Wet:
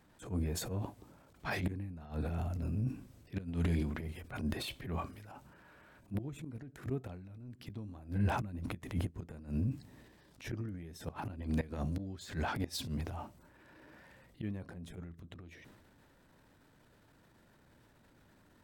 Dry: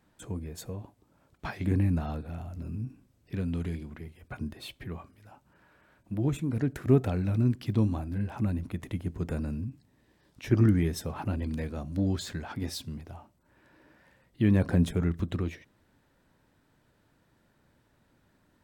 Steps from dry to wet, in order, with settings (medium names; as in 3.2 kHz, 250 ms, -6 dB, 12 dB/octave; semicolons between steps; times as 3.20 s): inverted gate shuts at -22 dBFS, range -25 dB; transient shaper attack -12 dB, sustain +7 dB; trim +2.5 dB